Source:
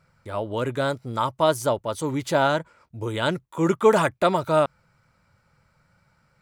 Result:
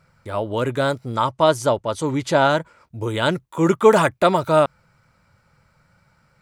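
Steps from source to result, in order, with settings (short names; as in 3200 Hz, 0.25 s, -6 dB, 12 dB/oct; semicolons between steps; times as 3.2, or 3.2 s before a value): 1.15–2.51 LPF 8800 Hz 12 dB/oct; gain +4 dB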